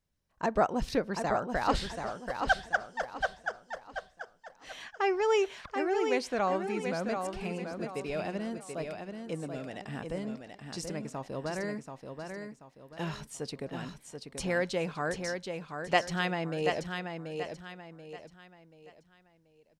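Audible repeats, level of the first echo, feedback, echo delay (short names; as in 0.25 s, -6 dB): 4, -6.0 dB, 36%, 0.733 s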